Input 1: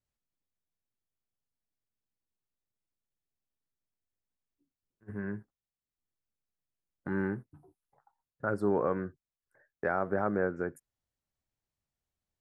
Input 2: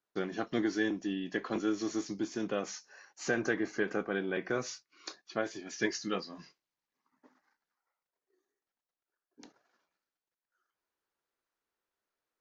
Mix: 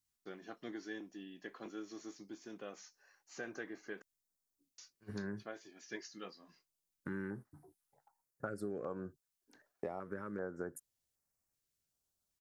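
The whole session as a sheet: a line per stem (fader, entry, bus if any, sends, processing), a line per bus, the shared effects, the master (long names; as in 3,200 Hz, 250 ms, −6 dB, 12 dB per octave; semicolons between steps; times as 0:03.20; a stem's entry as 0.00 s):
−0.5 dB, 0.00 s, no send, downward compressor, threshold −35 dBFS, peak gain reduction 11.5 dB; bass and treble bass +2 dB, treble +9 dB; notch on a step sequencer 2.6 Hz 560–3,300 Hz
−13.0 dB, 0.10 s, muted 0:04.02–0:04.78, no send, no processing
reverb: not used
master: low-shelf EQ 160 Hz −8 dB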